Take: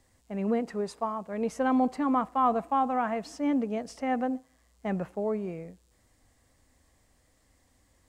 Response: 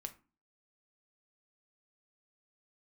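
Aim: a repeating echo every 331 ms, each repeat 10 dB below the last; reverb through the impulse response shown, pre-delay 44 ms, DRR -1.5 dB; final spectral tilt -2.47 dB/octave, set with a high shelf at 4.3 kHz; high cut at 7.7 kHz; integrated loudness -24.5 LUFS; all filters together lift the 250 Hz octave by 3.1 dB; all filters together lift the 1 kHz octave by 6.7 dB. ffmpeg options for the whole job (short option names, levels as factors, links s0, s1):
-filter_complex "[0:a]lowpass=7700,equalizer=f=250:t=o:g=3,equalizer=f=1000:t=o:g=8,highshelf=f=4300:g=8.5,aecho=1:1:331|662|993|1324:0.316|0.101|0.0324|0.0104,asplit=2[s0][s1];[1:a]atrim=start_sample=2205,adelay=44[s2];[s1][s2]afir=irnorm=-1:irlink=0,volume=1.78[s3];[s0][s3]amix=inputs=2:normalize=0,volume=0.668"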